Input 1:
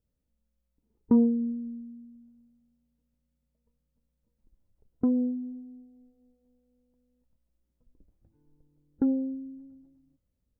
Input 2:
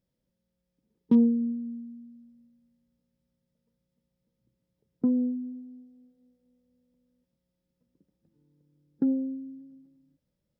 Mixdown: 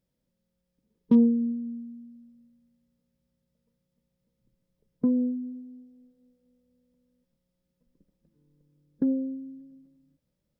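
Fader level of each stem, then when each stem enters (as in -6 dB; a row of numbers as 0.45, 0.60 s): -12.0, +1.0 dB; 0.00, 0.00 s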